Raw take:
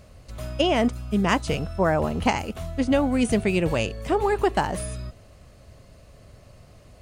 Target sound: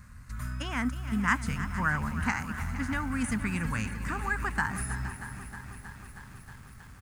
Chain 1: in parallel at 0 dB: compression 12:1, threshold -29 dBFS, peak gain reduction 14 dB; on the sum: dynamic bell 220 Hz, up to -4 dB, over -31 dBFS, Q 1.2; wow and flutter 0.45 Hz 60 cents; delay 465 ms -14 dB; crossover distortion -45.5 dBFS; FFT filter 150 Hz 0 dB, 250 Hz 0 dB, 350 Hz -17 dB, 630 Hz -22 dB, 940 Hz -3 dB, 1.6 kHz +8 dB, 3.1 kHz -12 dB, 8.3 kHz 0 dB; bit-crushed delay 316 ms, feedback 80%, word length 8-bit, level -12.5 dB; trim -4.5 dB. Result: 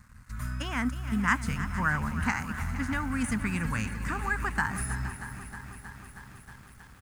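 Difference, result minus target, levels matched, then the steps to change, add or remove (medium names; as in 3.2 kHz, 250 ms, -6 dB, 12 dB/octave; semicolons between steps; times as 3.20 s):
compression: peak gain reduction -6 dB; crossover distortion: distortion +9 dB
change: compression 12:1, threshold -35.5 dBFS, peak gain reduction 20 dB; change: crossover distortion -56 dBFS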